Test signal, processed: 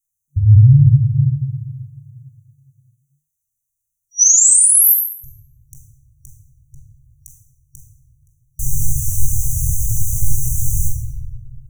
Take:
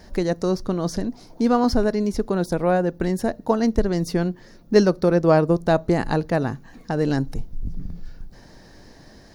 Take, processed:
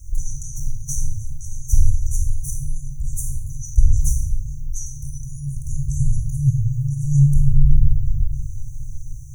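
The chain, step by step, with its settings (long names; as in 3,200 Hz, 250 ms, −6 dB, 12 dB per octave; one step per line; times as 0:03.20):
brick-wall band-stop 150–5,800 Hz
rectangular room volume 990 cubic metres, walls mixed, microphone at 2.4 metres
boost into a limiter +10 dB
level −1 dB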